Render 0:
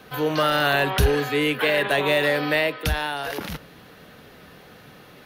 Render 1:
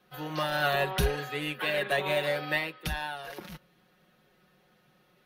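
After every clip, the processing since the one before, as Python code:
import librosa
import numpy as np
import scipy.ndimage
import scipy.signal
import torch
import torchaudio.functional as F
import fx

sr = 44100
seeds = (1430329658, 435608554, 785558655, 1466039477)

y = x + 0.78 * np.pad(x, (int(5.5 * sr / 1000.0), 0))[:len(x)]
y = fx.upward_expand(y, sr, threshold_db=-41.0, expansion=1.5)
y = F.gain(torch.from_numpy(y), -7.0).numpy()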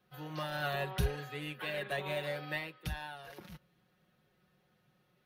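y = fx.peak_eq(x, sr, hz=96.0, db=11.5, octaves=1.1)
y = F.gain(torch.from_numpy(y), -9.0).numpy()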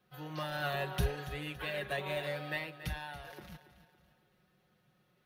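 y = fx.echo_feedback(x, sr, ms=281, feedback_pct=43, wet_db=-14)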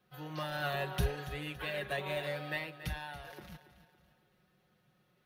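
y = x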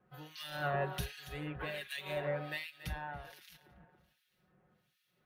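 y = fx.harmonic_tremolo(x, sr, hz=1.3, depth_pct=100, crossover_hz=2000.0)
y = F.gain(torch.from_numpy(y), 3.0).numpy()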